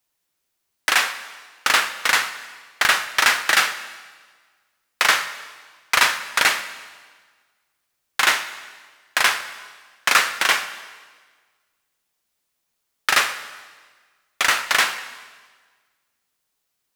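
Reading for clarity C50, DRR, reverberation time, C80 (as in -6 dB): 12.0 dB, 10.5 dB, 1.5 s, 13.0 dB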